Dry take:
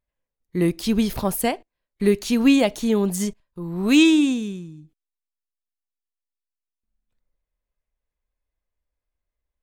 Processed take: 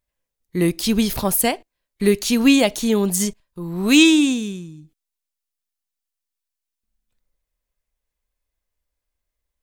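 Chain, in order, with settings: treble shelf 2.8 kHz +7.5 dB; trim +1.5 dB

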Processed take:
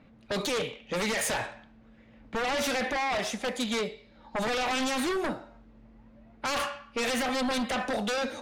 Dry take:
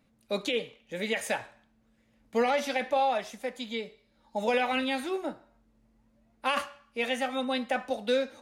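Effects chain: peak limiter -26.5 dBFS, peak gain reduction 9 dB; level-controlled noise filter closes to 2.8 kHz, open at -32.5 dBFS; sine folder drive 8 dB, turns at -25.5 dBFS

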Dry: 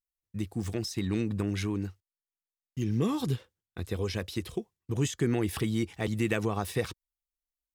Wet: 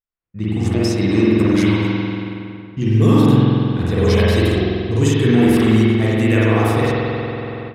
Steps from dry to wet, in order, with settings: spring tank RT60 2.7 s, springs 46 ms, chirp 55 ms, DRR -8 dB; level rider gain up to 14 dB; level-controlled noise filter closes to 2.1 kHz, open at -10.5 dBFS; trim -1 dB

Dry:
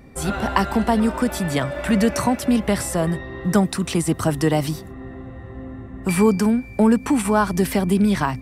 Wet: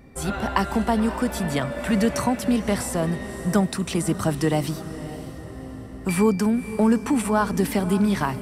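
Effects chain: echo that smears into a reverb 550 ms, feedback 41%, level -13 dB; trim -3 dB

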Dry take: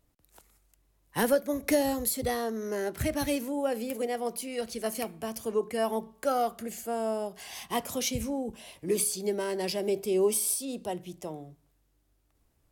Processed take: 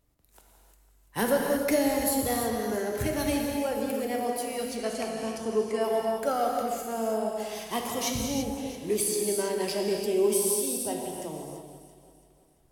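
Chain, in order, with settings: 4.60–5.81 s: low-pass 9.3 kHz 24 dB/octave; on a send: echo whose repeats swap between lows and highs 168 ms, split 1.7 kHz, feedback 67%, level -10 dB; on the sum: gated-style reverb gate 360 ms flat, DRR 0.5 dB; trim -1 dB

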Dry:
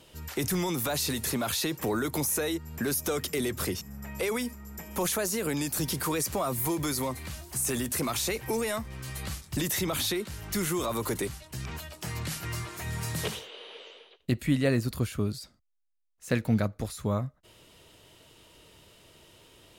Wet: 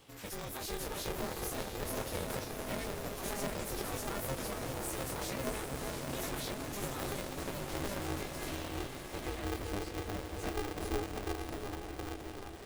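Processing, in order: compression 2:1, threshold -36 dBFS, peak gain reduction 9 dB; on a send: delay with an opening low-pass 564 ms, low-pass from 400 Hz, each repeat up 1 oct, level 0 dB; on the sum: plain phase-vocoder stretch 0.64×; chorus voices 4, 0.11 Hz, delay 21 ms, depth 3.4 ms; echo that smears into a reverb 689 ms, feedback 41%, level -6 dB; polarity switched at an audio rate 200 Hz

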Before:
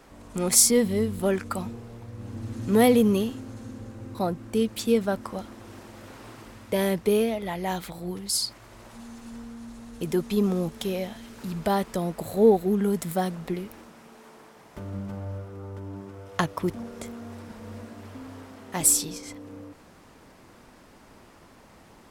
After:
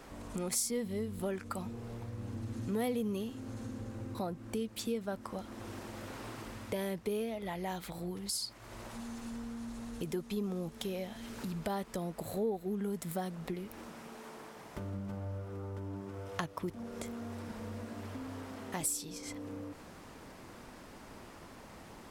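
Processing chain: compression 2.5:1, threshold -41 dBFS, peak gain reduction 18.5 dB; trim +1 dB

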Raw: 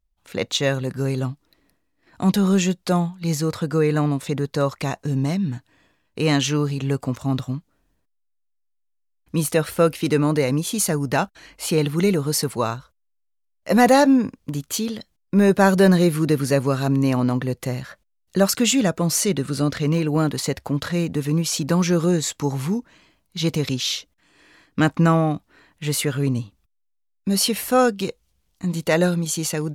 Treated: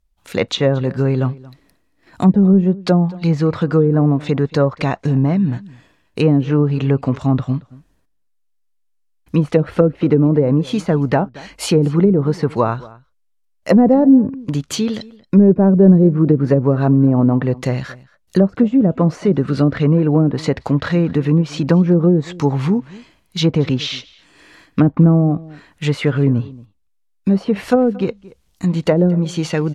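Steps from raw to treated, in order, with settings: low-pass that closes with the level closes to 400 Hz, closed at -14 dBFS; echo from a far wall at 39 m, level -21 dB; trim +7 dB

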